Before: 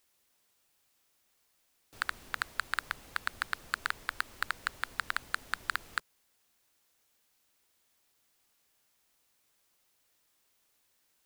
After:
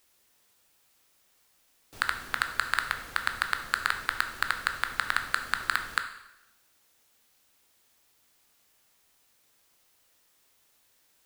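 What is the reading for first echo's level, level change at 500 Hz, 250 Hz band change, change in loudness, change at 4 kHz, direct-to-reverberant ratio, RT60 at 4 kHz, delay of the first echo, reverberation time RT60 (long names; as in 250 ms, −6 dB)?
no echo audible, +6.5 dB, +6.5 dB, +6.5 dB, +6.5 dB, 6.5 dB, 0.85 s, no echo audible, 0.85 s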